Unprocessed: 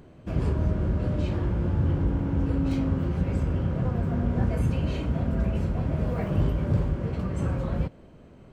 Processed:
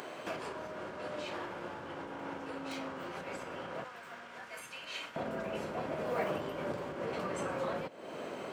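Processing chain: compressor 6:1, threshold -40 dBFS, peak gain reduction 19.5 dB; HPF 720 Hz 12 dB/oct, from 3.84 s 1500 Hz, from 5.16 s 490 Hz; gain +17 dB

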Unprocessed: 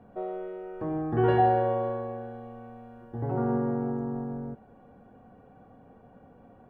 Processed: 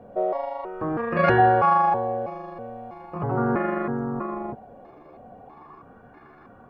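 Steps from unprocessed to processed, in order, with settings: trilling pitch shifter +7 st, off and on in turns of 0.323 s; LFO bell 0.4 Hz 550–1600 Hz +11 dB; gain +3.5 dB

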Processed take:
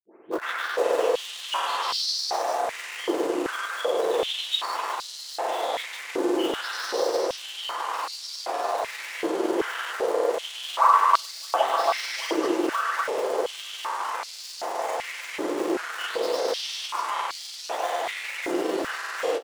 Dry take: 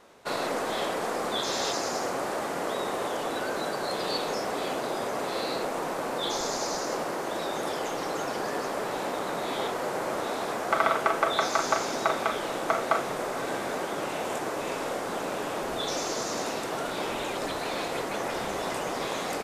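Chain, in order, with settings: spectral delay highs late, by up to 0.522 s; in parallel at -10 dB: bit-crush 5-bit; on the sum: formant shift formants -3 st; grains, pitch spread up and down by 0 st; doubler 31 ms -10.5 dB; stepped high-pass 2.6 Hz 340–4500 Hz

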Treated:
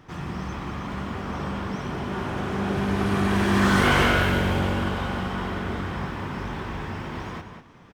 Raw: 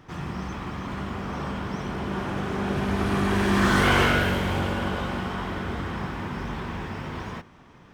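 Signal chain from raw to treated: outdoor echo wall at 33 m, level -7 dB

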